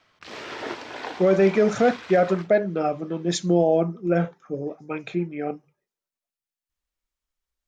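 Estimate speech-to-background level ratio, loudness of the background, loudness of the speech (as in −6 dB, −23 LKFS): 13.5 dB, −36.5 LKFS, −23.0 LKFS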